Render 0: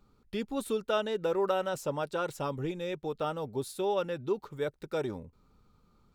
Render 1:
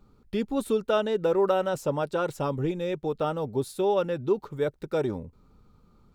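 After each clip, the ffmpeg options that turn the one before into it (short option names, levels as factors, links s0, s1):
-af "tiltshelf=f=970:g=3,volume=1.58"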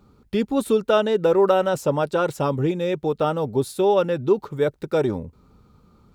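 -af "highpass=45,volume=2"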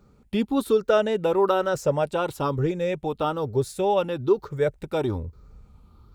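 -af "afftfilt=real='re*pow(10,6/40*sin(2*PI*(0.55*log(max(b,1)*sr/1024/100)/log(2)-(1.1)*(pts-256)/sr)))':imag='im*pow(10,6/40*sin(2*PI*(0.55*log(max(b,1)*sr/1024/100)/log(2)-(1.1)*(pts-256)/sr)))':win_size=1024:overlap=0.75,asubboost=boost=5:cutoff=84,volume=0.75"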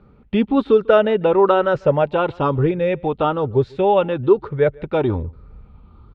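-filter_complex "[0:a]lowpass=f=3200:w=0.5412,lowpass=f=3200:w=1.3066,asplit=2[s0][s1];[s1]adelay=145.8,volume=0.0501,highshelf=f=4000:g=-3.28[s2];[s0][s2]amix=inputs=2:normalize=0,volume=2.11"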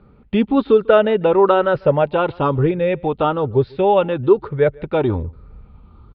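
-af "aresample=11025,aresample=44100,volume=1.12"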